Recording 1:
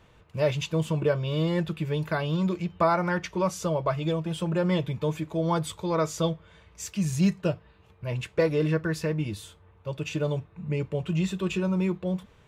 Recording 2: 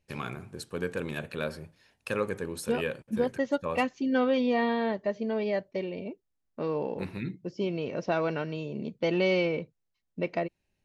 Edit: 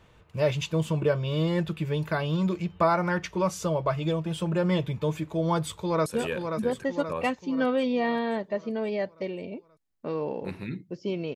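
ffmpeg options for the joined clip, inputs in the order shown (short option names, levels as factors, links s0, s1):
-filter_complex "[0:a]apad=whole_dur=11.35,atrim=end=11.35,atrim=end=6.062[s0];[1:a]atrim=start=2.598:end=7.89[s1];[s0][s1]acrossfade=d=0.004:c1=hsin:c2=hsin,asplit=2[s2][s3];[s3]afade=t=in:st=5.65:d=0.01,afade=t=out:st=6.06:d=0.01,aecho=0:1:530|1060|1590|2120|2650|3180|3710:0.501187|0.275653|0.151609|0.083385|0.0458618|0.025224|0.0138732[s4];[s2][s4]amix=inputs=2:normalize=0"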